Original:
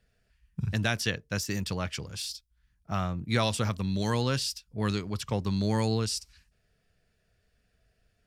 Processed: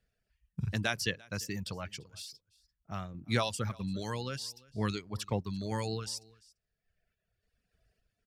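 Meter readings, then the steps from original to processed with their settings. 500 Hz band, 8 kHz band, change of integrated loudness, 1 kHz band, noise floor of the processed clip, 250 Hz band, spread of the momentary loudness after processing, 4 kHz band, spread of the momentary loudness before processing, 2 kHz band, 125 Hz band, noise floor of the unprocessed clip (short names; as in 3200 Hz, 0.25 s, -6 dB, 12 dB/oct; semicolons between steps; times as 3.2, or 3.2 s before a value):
-5.5 dB, -6.0 dB, -6.0 dB, -5.0 dB, under -85 dBFS, -7.0 dB, 12 LU, -5.5 dB, 8 LU, -4.0 dB, -6.5 dB, -73 dBFS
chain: reverb removal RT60 1.3 s; random-step tremolo; on a send: echo 0.343 s -24 dB; on the sum: gain -2 dB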